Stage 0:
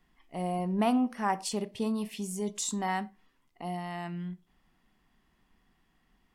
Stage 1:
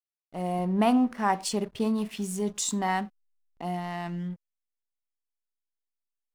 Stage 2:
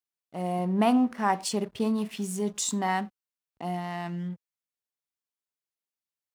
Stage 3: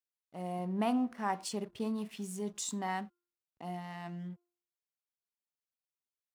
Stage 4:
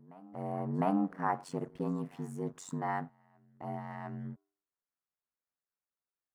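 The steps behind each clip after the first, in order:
level rider gain up to 4 dB; hysteresis with a dead band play -41.5 dBFS
high-pass 66 Hz
de-hum 349.8 Hz, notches 4; trim -8.5 dB
ring modulator 46 Hz; resonant high shelf 2.2 kHz -11.5 dB, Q 1.5; reverse echo 705 ms -24 dB; trim +3.5 dB

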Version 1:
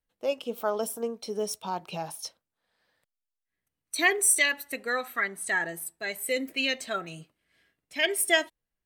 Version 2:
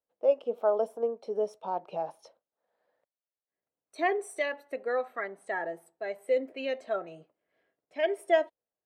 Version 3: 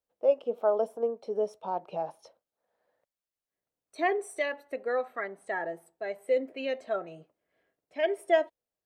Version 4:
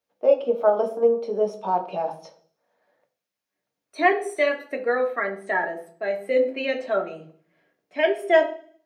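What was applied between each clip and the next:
band-pass filter 580 Hz, Q 1.9; trim +5 dB
bass shelf 100 Hz +9.5 dB
reverberation RT60 0.50 s, pre-delay 3 ms, DRR 3.5 dB; trim +2.5 dB

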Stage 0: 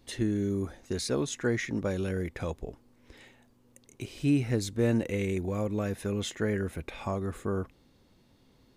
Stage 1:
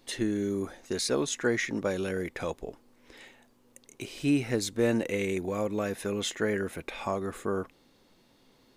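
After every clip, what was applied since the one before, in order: peaking EQ 63 Hz -14.5 dB 2.8 oct; trim +4 dB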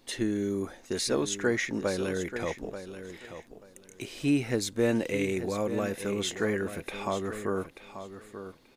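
feedback delay 885 ms, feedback 19%, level -11 dB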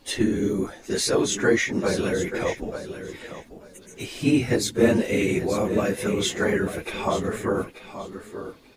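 phase randomisation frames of 50 ms; trim +6.5 dB

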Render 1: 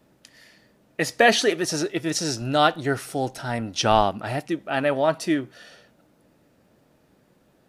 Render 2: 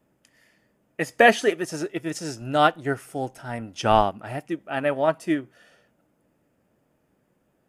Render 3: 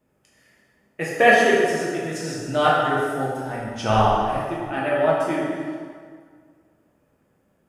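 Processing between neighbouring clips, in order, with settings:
peaking EQ 4.1 kHz -11.5 dB 0.41 oct; band-stop 5.7 kHz, Q 13; upward expansion 1.5:1, over -32 dBFS; trim +2 dB
plate-style reverb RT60 1.9 s, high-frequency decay 0.7×, DRR -6 dB; trim -4 dB

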